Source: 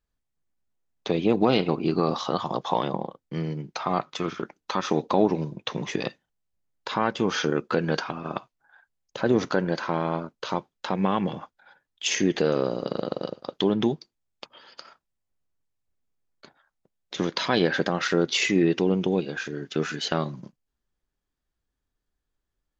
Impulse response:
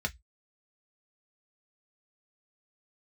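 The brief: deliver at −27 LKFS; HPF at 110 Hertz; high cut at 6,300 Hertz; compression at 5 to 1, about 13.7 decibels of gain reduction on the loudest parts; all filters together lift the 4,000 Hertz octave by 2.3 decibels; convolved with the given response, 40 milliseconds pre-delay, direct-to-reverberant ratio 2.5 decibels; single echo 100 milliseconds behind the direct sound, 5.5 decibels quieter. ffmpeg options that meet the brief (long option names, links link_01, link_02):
-filter_complex "[0:a]highpass=110,lowpass=6300,equalizer=frequency=4000:width_type=o:gain=3.5,acompressor=threshold=-32dB:ratio=5,aecho=1:1:100:0.531,asplit=2[link_01][link_02];[1:a]atrim=start_sample=2205,adelay=40[link_03];[link_02][link_03]afir=irnorm=-1:irlink=0,volume=-7.5dB[link_04];[link_01][link_04]amix=inputs=2:normalize=0,volume=6.5dB"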